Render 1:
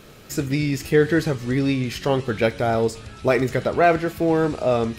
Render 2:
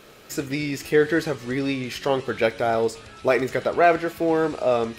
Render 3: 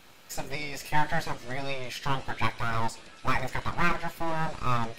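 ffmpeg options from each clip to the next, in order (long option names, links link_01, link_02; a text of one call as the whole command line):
ffmpeg -i in.wav -af "bass=frequency=250:gain=-10,treble=frequency=4000:gain=-2" out.wav
ffmpeg -i in.wav -filter_complex "[0:a]flanger=delay=8.4:depth=1.2:regen=-48:speed=1.7:shape=sinusoidal,acrossover=split=1200[link_01][link_02];[link_01]aeval=exprs='abs(val(0))':channel_layout=same[link_03];[link_03][link_02]amix=inputs=2:normalize=0" out.wav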